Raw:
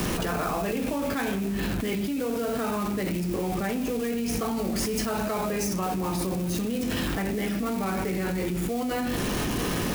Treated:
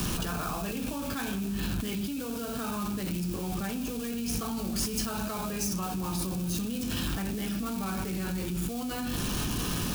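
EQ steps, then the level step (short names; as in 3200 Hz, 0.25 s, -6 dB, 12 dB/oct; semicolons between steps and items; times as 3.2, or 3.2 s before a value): bell 510 Hz -10.5 dB 1.9 oct; bell 2000 Hz -11.5 dB 0.34 oct; 0.0 dB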